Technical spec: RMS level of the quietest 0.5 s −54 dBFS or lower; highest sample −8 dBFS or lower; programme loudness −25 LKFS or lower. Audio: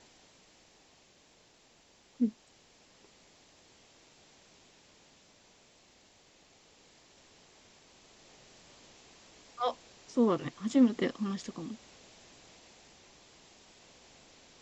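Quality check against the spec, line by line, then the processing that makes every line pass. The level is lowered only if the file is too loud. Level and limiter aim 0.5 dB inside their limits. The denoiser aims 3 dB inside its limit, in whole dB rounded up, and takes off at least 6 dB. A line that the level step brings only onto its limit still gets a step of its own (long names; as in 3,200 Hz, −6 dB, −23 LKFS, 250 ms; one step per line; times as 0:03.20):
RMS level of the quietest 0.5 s −64 dBFS: in spec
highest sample −14.5 dBFS: in spec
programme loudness −31.5 LKFS: in spec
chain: no processing needed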